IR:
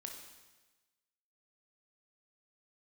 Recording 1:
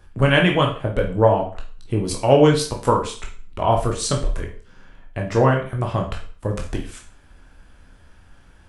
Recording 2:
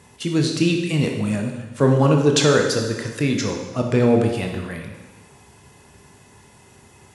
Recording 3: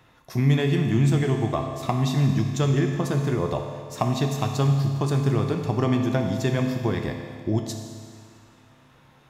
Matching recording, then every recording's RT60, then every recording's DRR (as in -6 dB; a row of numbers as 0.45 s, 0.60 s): 2; 0.40 s, 1.2 s, 2.1 s; 0.5 dB, 2.0 dB, 3.0 dB